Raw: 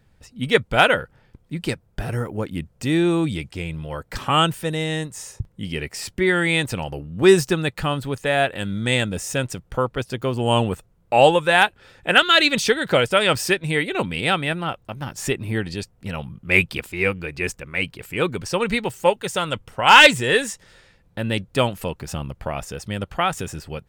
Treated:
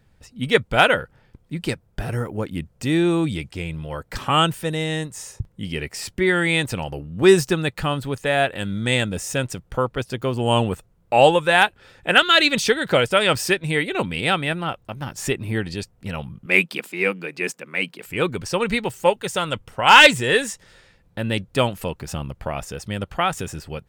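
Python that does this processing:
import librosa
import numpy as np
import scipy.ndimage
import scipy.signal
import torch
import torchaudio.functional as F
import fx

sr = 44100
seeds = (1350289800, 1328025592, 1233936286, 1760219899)

y = fx.steep_highpass(x, sr, hz=170.0, slope=36, at=(16.46, 18.06))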